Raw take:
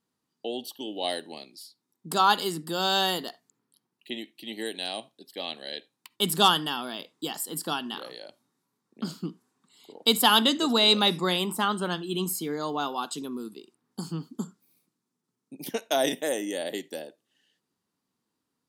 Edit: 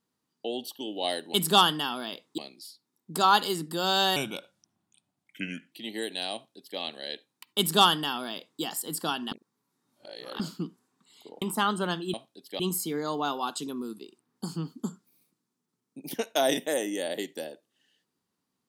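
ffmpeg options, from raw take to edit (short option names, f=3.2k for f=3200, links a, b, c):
-filter_complex "[0:a]asplit=10[a][b][c][d][e][f][g][h][i][j];[a]atrim=end=1.342[k];[b]atrim=start=6.208:end=7.252[l];[c]atrim=start=1.338:end=3.124[m];[d]atrim=start=3.12:end=4.35,asetpts=PTS-STARTPTS,asetrate=34839,aresample=44100,atrim=end_sample=68662,asetpts=PTS-STARTPTS[n];[e]atrim=start=4.346:end=7.952[o];[f]atrim=start=7.948:end=9.032,asetpts=PTS-STARTPTS,areverse[p];[g]atrim=start=9.028:end=10.052[q];[h]atrim=start=11.428:end=12.152[r];[i]atrim=start=4.968:end=5.432[s];[j]atrim=start=12.148[t];[k][l]acrossfade=d=0.004:c1=hsin:c2=hsin[u];[u][m]acrossfade=d=0.004:c1=hsin:c2=hsin[v];[v][n]acrossfade=d=0.004:c1=hsin:c2=hsin[w];[w][o]acrossfade=d=0.004:c1=hsin:c2=hsin[x];[x][p]acrossfade=d=0.004:c1=hsin:c2=hsin[y];[y][q]acrossfade=d=0.004:c1=hsin:c2=hsin[z];[z][r]acrossfade=d=0.004:c1=hsin:c2=hsin[aa];[aa][s]acrossfade=d=0.004:c1=hsin:c2=hsin[ab];[ab][t]acrossfade=d=0.004:c1=hsin:c2=hsin"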